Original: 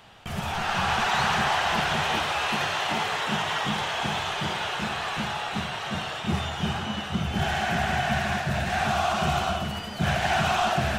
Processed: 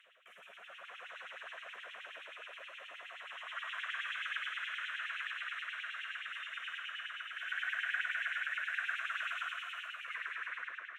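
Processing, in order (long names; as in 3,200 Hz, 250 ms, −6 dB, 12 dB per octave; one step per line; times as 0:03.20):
turntable brake at the end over 1.24 s
guitar amp tone stack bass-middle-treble 5-5-5
band-pass filter sweep 520 Hz → 1,500 Hz, 0:02.89–0:03.82
high-shelf EQ 3,700 Hz +9 dB
phaser with its sweep stopped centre 2,000 Hz, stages 4
echo with a time of its own for lows and highs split 1,900 Hz, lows 114 ms, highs 166 ms, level −6 dB
on a send at −2 dB: convolution reverb, pre-delay 149 ms
on the sum: auto-filter high-pass sine 9.5 Hz 540–3,200 Hz
reversed playback
upward compression, threshold −49 dBFS
reversed playback
level +1 dB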